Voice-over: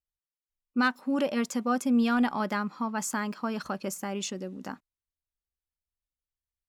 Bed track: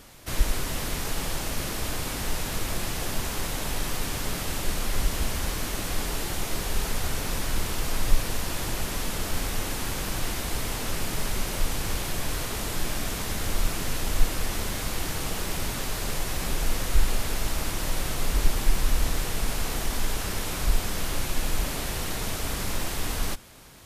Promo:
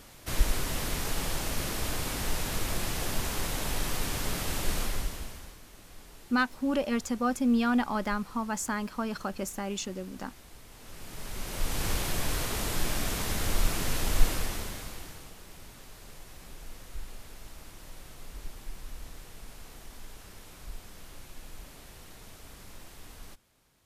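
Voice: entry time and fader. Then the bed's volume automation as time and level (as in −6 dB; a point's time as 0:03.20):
5.55 s, −1.0 dB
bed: 0:04.81 −2 dB
0:05.61 −21.5 dB
0:10.68 −21.5 dB
0:11.84 −1 dB
0:14.30 −1 dB
0:15.36 −19 dB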